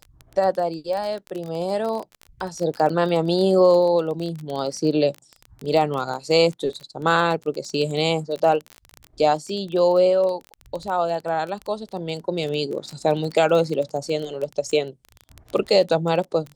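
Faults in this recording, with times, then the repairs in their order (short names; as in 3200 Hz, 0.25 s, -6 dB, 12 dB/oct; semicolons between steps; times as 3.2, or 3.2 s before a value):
crackle 21/s -26 dBFS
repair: de-click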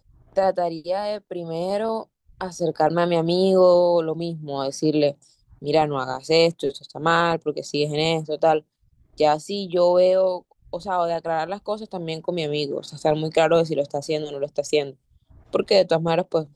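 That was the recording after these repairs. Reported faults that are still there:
none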